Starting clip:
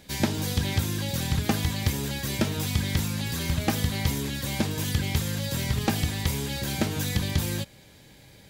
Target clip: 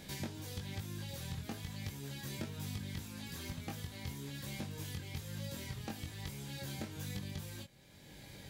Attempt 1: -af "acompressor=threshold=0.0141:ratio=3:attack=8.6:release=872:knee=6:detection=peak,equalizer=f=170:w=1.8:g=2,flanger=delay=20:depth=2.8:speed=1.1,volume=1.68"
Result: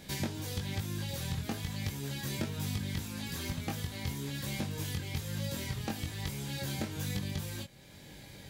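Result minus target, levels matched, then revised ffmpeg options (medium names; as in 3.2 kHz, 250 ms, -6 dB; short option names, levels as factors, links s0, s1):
compression: peak gain reduction -6.5 dB
-af "acompressor=threshold=0.00447:ratio=3:attack=8.6:release=872:knee=6:detection=peak,equalizer=f=170:w=1.8:g=2,flanger=delay=20:depth=2.8:speed=1.1,volume=1.68"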